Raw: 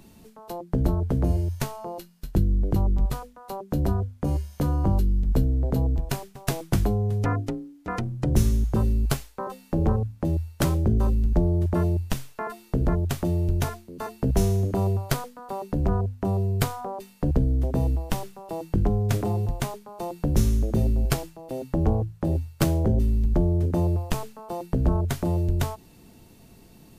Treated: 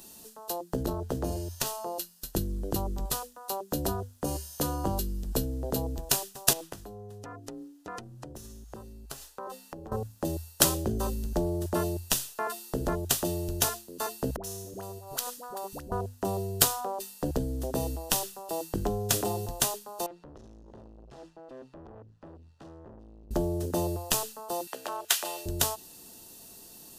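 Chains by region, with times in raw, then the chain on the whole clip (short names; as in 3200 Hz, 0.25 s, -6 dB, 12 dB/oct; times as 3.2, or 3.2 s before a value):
0.83–1.67 bell 11000 Hz -5.5 dB 1.2 oct + core saturation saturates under 120 Hz
6.53–9.92 high shelf 4300 Hz -9 dB + compressor 8:1, threshold -34 dBFS
14.36–15.92 compressor 5:1, threshold -33 dBFS + dispersion highs, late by 77 ms, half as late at 620 Hz
20.06–23.31 compressor 3:1, threshold -33 dBFS + tube stage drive 38 dB, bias 0.5 + tape spacing loss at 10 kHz 33 dB
24.67–25.46 HPF 760 Hz + bell 2400 Hz +8.5 dB 1.4 oct
whole clip: tone controls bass -12 dB, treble +13 dB; notch 2200 Hz, Q 5.2; dynamic EQ 3000 Hz, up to +4 dB, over -47 dBFS, Q 1.5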